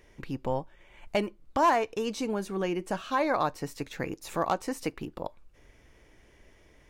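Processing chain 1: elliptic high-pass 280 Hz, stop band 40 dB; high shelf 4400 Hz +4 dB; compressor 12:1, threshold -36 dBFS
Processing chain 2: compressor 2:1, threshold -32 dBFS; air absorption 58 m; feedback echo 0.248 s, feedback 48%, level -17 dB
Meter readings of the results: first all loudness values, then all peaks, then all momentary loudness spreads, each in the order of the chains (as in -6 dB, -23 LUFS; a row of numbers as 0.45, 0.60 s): -42.0, -35.5 LUFS; -20.5, -19.5 dBFS; 21, 9 LU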